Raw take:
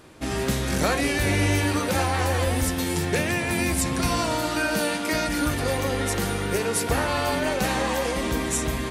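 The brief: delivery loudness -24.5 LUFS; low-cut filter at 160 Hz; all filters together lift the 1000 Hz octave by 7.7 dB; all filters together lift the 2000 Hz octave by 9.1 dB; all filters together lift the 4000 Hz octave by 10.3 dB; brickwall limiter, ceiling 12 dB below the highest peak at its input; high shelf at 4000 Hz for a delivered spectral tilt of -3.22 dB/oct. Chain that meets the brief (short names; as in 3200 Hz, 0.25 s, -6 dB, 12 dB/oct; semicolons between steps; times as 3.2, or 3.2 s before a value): HPF 160 Hz; bell 1000 Hz +7.5 dB; bell 2000 Hz +6 dB; high shelf 4000 Hz +4.5 dB; bell 4000 Hz +8 dB; gain -2 dB; limiter -16.5 dBFS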